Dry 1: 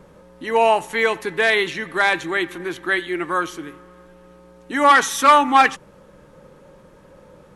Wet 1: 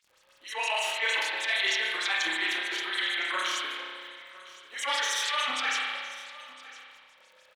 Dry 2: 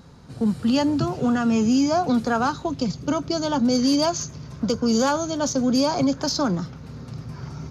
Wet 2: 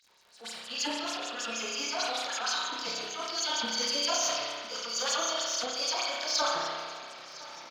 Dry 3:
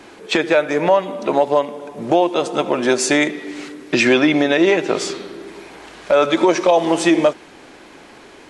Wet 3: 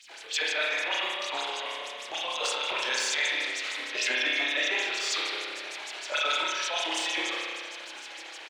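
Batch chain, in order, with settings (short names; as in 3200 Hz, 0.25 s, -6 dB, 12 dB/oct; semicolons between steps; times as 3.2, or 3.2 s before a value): median filter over 3 samples; weighting filter D; gate -42 dBFS, range -7 dB; dynamic EQ 620 Hz, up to -6 dB, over -29 dBFS, Q 2.2; compressor, threshold -18 dBFS; chorus voices 4, 0.6 Hz, delay 26 ms, depth 4.6 ms; LFO high-pass sine 6.5 Hz 560–7300 Hz; transient shaper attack -12 dB, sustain +9 dB; crackle 40/s -43 dBFS; echo 1.009 s -18.5 dB; spring tank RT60 1.8 s, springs 31 ms, chirp 20 ms, DRR -2.5 dB; sustainer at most 33 dB/s; gain -6.5 dB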